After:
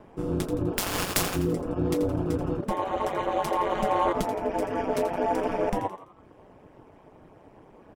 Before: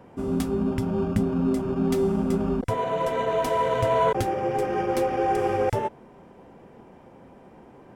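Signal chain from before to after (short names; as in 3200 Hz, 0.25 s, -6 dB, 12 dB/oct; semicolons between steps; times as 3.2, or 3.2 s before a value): 0.77–1.35 spectral contrast lowered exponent 0.3; reverb removal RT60 0.73 s; ring modulator 95 Hz; frequency-shifting echo 84 ms, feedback 43%, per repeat +85 Hz, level -11 dB; gain +1.5 dB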